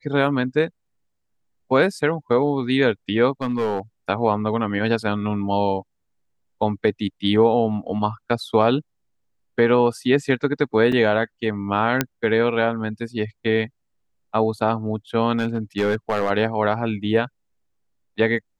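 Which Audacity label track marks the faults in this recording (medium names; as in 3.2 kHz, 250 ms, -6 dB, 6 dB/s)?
3.410000	3.800000	clipped -17.5 dBFS
10.920000	10.920000	dropout 4 ms
12.010000	12.010000	pop -3 dBFS
15.380000	16.310000	clipped -15 dBFS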